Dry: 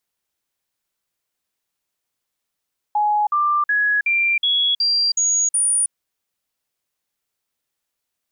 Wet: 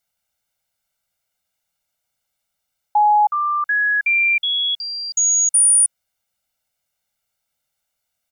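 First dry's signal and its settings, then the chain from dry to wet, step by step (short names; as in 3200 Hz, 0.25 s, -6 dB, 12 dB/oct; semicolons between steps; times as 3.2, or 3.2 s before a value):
stepped sine 838 Hz up, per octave 2, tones 8, 0.32 s, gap 0.05 s -15 dBFS
comb 1.4 ms, depth 92%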